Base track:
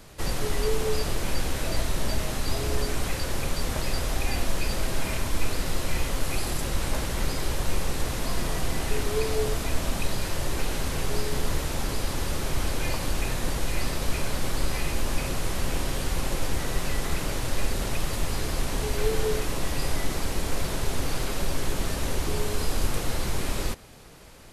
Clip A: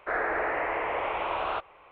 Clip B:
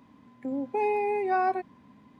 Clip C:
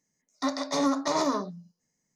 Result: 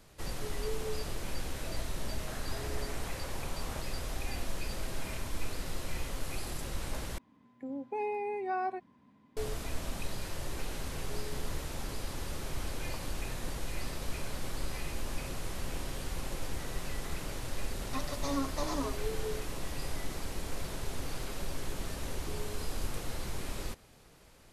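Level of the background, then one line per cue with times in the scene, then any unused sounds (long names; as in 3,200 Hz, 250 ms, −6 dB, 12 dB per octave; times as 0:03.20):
base track −10 dB
0:02.21: mix in A −6.5 dB + downward compressor, threshold −40 dBFS
0:07.18: overwrite with B −8 dB
0:17.51: mix in C −7 dB + barber-pole flanger 6.2 ms −1.9 Hz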